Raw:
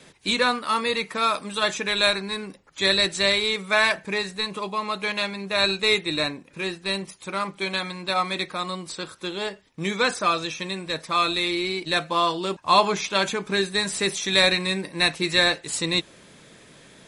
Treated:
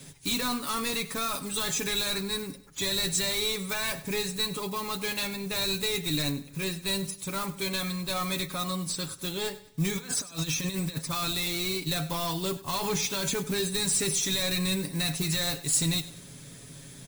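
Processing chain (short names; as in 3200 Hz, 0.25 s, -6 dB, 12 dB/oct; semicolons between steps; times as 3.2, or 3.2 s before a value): block floating point 5-bit; limiter -15 dBFS, peak gain reduction 10 dB; high shelf 9500 Hz +9.5 dB; 9.95–10.98 negative-ratio compressor -32 dBFS, ratio -0.5; soft clip -22 dBFS, distortion -13 dB; tone controls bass +14 dB, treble +9 dB; comb 7.2 ms, depth 54%; feedback echo 98 ms, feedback 38%, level -17 dB; gain -6 dB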